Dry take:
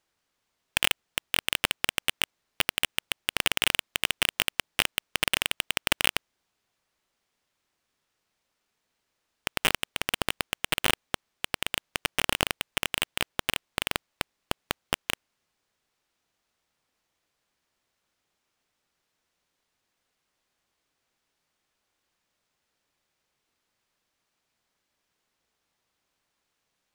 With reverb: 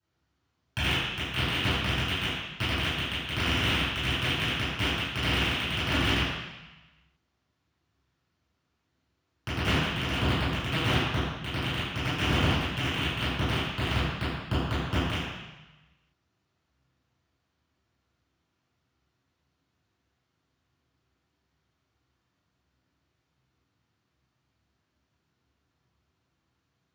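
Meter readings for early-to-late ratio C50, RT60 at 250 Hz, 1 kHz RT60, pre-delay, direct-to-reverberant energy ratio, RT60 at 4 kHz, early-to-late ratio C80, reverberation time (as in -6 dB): -2.5 dB, 1.1 s, 1.2 s, 3 ms, -16.5 dB, 1.2 s, 0.5 dB, 1.1 s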